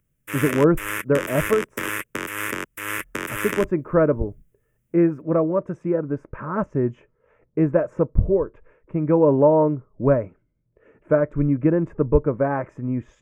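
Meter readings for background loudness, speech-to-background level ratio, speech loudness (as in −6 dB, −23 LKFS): −28.5 LKFS, 6.5 dB, −22.0 LKFS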